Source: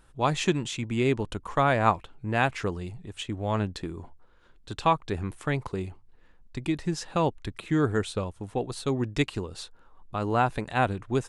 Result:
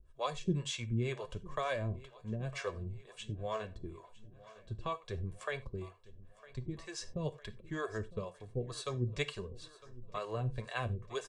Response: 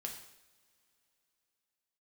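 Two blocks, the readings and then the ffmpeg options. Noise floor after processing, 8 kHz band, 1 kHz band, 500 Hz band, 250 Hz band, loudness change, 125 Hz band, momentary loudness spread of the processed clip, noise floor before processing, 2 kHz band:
−60 dBFS, −8.0 dB, −15.5 dB, −10.5 dB, −13.5 dB, −11.5 dB, −8.0 dB, 14 LU, −56 dBFS, −11.5 dB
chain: -filter_complex "[0:a]lowpass=frequency=9200:width=0.5412,lowpass=frequency=9200:width=1.3066,aecho=1:1:1.8:0.7,acrossover=split=480|3000[link_01][link_02][link_03];[link_02]acompressor=threshold=-29dB:ratio=6[link_04];[link_01][link_04][link_03]amix=inputs=3:normalize=0,acrossover=split=420[link_05][link_06];[link_05]aeval=exprs='val(0)*(1-1/2+1/2*cos(2*PI*2.1*n/s))':channel_layout=same[link_07];[link_06]aeval=exprs='val(0)*(1-1/2-1/2*cos(2*PI*2.1*n/s))':channel_layout=same[link_08];[link_07][link_08]amix=inputs=2:normalize=0,flanger=delay=2.9:depth=5.9:regen=41:speed=0.51:shape=sinusoidal,aecho=1:1:956|1912|2868|3824|4780:0.106|0.0614|0.0356|0.0207|0.012,asplit=2[link_09][link_10];[1:a]atrim=start_sample=2205,atrim=end_sample=4410[link_11];[link_10][link_11]afir=irnorm=-1:irlink=0,volume=-5dB[link_12];[link_09][link_12]amix=inputs=2:normalize=0,volume=-4dB"

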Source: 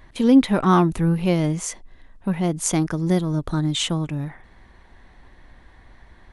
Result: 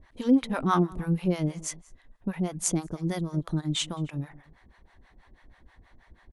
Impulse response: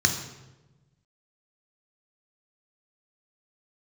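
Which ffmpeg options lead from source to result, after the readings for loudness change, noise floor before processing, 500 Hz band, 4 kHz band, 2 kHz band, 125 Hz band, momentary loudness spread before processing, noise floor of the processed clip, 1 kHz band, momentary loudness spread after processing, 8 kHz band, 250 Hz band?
−7.5 dB, −51 dBFS, −8.5 dB, −6.5 dB, −7.0 dB, −7.5 dB, 12 LU, −61 dBFS, −7.0 dB, 13 LU, −5.0 dB, −8.0 dB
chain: -filter_complex "[0:a]asplit=2[link_01][link_02];[link_02]adelay=221.6,volume=-20dB,highshelf=frequency=4000:gain=-4.99[link_03];[link_01][link_03]amix=inputs=2:normalize=0,acrossover=split=560[link_04][link_05];[link_04]aeval=exprs='val(0)*(1-1/2+1/2*cos(2*PI*6.2*n/s))':channel_layout=same[link_06];[link_05]aeval=exprs='val(0)*(1-1/2-1/2*cos(2*PI*6.2*n/s))':channel_layout=same[link_07];[link_06][link_07]amix=inputs=2:normalize=0,volume=-3dB"

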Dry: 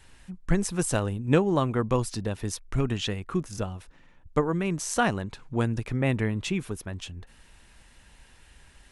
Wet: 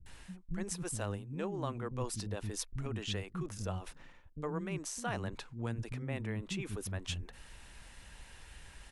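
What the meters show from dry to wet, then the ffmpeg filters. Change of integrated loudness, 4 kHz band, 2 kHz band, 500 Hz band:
−11.5 dB, −7.0 dB, −11.0 dB, −13.0 dB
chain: -filter_complex "[0:a]areverse,acompressor=threshold=-36dB:ratio=6,areverse,acrossover=split=260[link_01][link_02];[link_02]adelay=60[link_03];[link_01][link_03]amix=inputs=2:normalize=0,volume=1.5dB"

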